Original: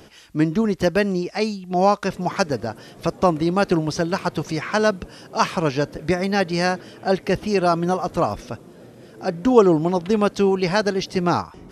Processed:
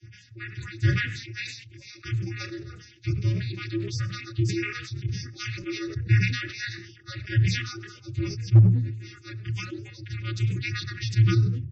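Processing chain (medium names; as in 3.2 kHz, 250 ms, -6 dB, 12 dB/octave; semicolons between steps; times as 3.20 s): harmonic-percussive separation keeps percussive; reverb removal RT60 0.81 s; elliptic band-stop 230–2000 Hz, stop band 40 dB; peaking EQ 3.2 kHz -10.5 dB 0.27 oct; in parallel at -5.5 dB: integer overflow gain 15 dB; on the sum: vocoder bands 16, square 112 Hz; chorus voices 4, 1.1 Hz, delay 24 ms, depth 3 ms; loudest bins only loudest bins 64; one-sided clip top -18.5 dBFS, bottom -17 dBFS; frequency-shifting echo 99 ms, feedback 33%, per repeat +70 Hz, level -24 dB; on a send at -16 dB: reverberation RT60 0.45 s, pre-delay 3 ms; on the sum: decay stretcher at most 64 dB/s; trim +8.5 dB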